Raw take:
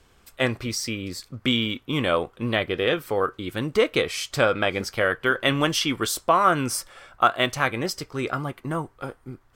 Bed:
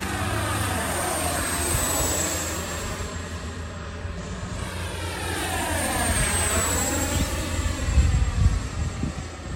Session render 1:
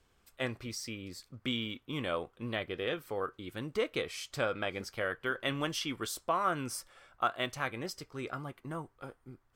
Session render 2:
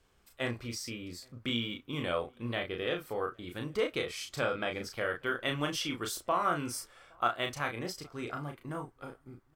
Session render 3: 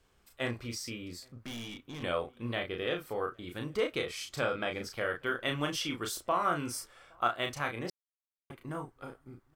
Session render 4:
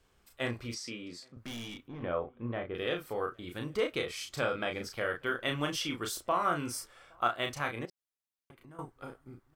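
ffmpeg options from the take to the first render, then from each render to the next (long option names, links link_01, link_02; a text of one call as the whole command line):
ffmpeg -i in.wav -af "volume=-12dB" out.wav
ffmpeg -i in.wav -filter_complex "[0:a]asplit=2[link_01][link_02];[link_02]adelay=34,volume=-4.5dB[link_03];[link_01][link_03]amix=inputs=2:normalize=0,asplit=2[link_04][link_05];[link_05]adelay=816.3,volume=-30dB,highshelf=frequency=4000:gain=-18.4[link_06];[link_04][link_06]amix=inputs=2:normalize=0" out.wav
ffmpeg -i in.wav -filter_complex "[0:a]asettb=1/sr,asplit=3[link_01][link_02][link_03];[link_01]atrim=end=1.284[link_04];[link_02]atrim=start=1.28:end=2.03,asetpts=PTS-STARTPTS,afade=type=in:duration=0.004:curve=qsin,afade=type=out:start_time=0.746:duration=0.004:curve=qsin,aeval=exprs='(tanh(89.1*val(0)+0.3)-tanh(0.3))/89.1':channel_layout=same[link_05];[link_03]atrim=start=2.026[link_06];[link_04][link_05]acrossfade=duration=0.004:curve1=hsin:curve2=qsin[link_07];[link_07][link_06]acrossfade=duration=0.004:curve1=qsin:curve2=hsin,asplit=3[link_08][link_09][link_10];[link_08]atrim=end=7.9,asetpts=PTS-STARTPTS,afade=type=out:start_time=7.896:duration=0.004:curve=hsin[link_11];[link_09]atrim=start=7.9:end=8.5,asetpts=PTS-STARTPTS,volume=0[link_12];[link_10]atrim=start=8.5,asetpts=PTS-STARTPTS,afade=type=in:duration=0.004:curve=hsin[link_13];[link_11][link_12][link_13]concat=n=3:v=0:a=1" out.wav
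ffmpeg -i in.wav -filter_complex "[0:a]asettb=1/sr,asplit=3[link_01][link_02][link_03];[link_01]atrim=end=0.744[link_04];[link_02]atrim=start=0.74:end=1.37,asetpts=PTS-STARTPTS,afade=type=in:duration=0.004:curve=qsin,afade=type=out:start_time=0.626:duration=0.004:curve=qsin,highpass=170,lowpass=7300[link_05];[link_03]atrim=start=1.366[link_06];[link_04][link_05]acrossfade=duration=0.004:curve1=hsin:curve2=qsin[link_07];[link_07][link_06]acrossfade=duration=0.004:curve1=qsin:curve2=hsin,asettb=1/sr,asplit=3[link_08][link_09][link_10];[link_08]atrim=end=1.884[link_11];[link_09]atrim=start=1.88:end=2.75,asetpts=PTS-STARTPTS,afade=type=in:duration=0.004:curve=qsin,afade=type=out:start_time=0.866:duration=0.004:curve=qsin,lowpass=1400[link_12];[link_10]atrim=start=2.746[link_13];[link_11][link_12]acrossfade=duration=0.004:curve1=hsin:curve2=qsin[link_14];[link_14][link_13]acrossfade=duration=0.004:curve1=qsin:curve2=hsin,asettb=1/sr,asplit=3[link_15][link_16][link_17];[link_15]atrim=end=7.854[link_18];[link_16]atrim=start=7.85:end=8.79,asetpts=PTS-STARTPTS,afade=type=in:duration=0.004:curve=qsin,afade=type=out:start_time=0.936:duration=0.004:curve=qsin,acompressor=threshold=-54dB:ratio=3:attack=3.2:release=140:knee=1:detection=peak[link_19];[link_17]atrim=start=8.786[link_20];[link_18][link_19]acrossfade=duration=0.004:curve1=hsin:curve2=qsin[link_21];[link_21][link_20]acrossfade=duration=0.004:curve1=qsin:curve2=hsin" out.wav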